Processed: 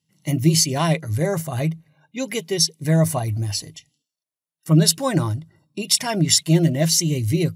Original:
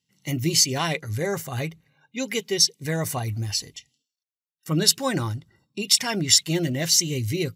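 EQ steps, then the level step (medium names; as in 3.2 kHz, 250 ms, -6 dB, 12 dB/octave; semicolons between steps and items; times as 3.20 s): graphic EQ with 31 bands 100 Hz +7 dB, 160 Hz +12 dB, 315 Hz +8 dB, 630 Hz +11 dB, 1 kHz +5 dB, 10 kHz +9 dB; -1.0 dB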